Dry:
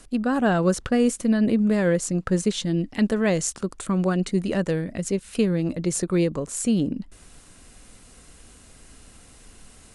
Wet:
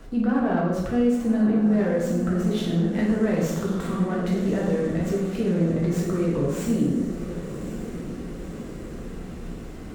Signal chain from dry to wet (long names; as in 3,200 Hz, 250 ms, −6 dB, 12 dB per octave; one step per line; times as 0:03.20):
low-pass filter 1,200 Hz 6 dB per octave
downward compressor 1.5 to 1, threshold −34 dBFS, peak gain reduction 7 dB
brickwall limiter −26.5 dBFS, peak gain reduction 10.5 dB
feedback delay with all-pass diffusion 1,093 ms, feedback 63%, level −11 dB
dense smooth reverb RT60 1 s, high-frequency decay 0.8×, DRR −5 dB
windowed peak hold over 3 samples
level +5 dB